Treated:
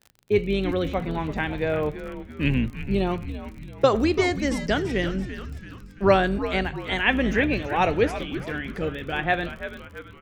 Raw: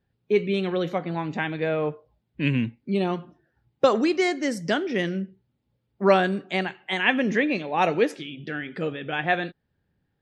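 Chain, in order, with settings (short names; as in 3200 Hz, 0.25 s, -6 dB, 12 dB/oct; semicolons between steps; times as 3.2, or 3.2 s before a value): octaver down 2 oct, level -5 dB; crackle 30/s -35 dBFS; frequency-shifting echo 0.336 s, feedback 51%, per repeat -120 Hz, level -11 dB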